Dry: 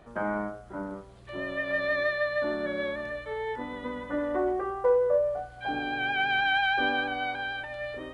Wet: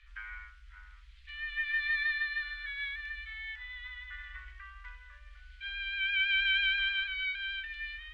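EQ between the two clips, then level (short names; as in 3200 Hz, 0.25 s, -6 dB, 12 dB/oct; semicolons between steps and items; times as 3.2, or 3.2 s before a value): inverse Chebyshev band-stop 140–730 Hz, stop band 60 dB; LPF 2900 Hz 12 dB/oct; +6.5 dB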